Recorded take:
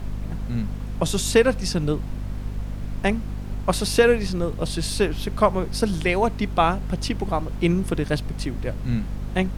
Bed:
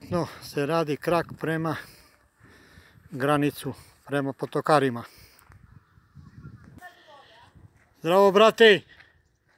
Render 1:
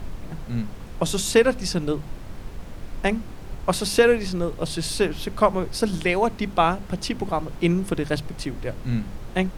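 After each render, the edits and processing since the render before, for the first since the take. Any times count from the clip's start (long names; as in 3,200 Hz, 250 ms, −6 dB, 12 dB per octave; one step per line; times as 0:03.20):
mains-hum notches 50/100/150/200/250 Hz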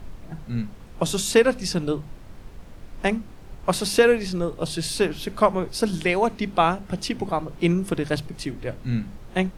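noise reduction from a noise print 6 dB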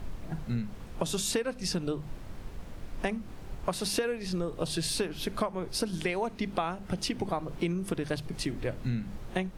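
downward compressor 10 to 1, threshold −27 dBFS, peak gain reduction 16.5 dB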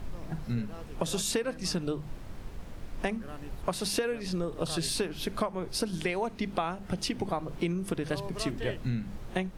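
mix in bed −23 dB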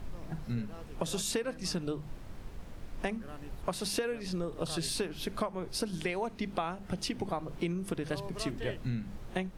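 level −3 dB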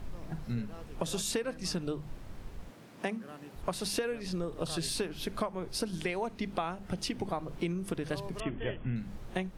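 0:02.70–0:03.56: high-pass filter 140 Hz 24 dB per octave
0:08.40–0:08.96: linear-phase brick-wall low-pass 3,500 Hz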